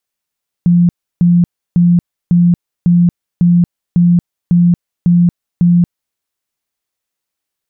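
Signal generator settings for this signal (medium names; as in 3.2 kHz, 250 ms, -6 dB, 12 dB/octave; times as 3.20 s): tone bursts 174 Hz, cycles 40, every 0.55 s, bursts 10, -5.5 dBFS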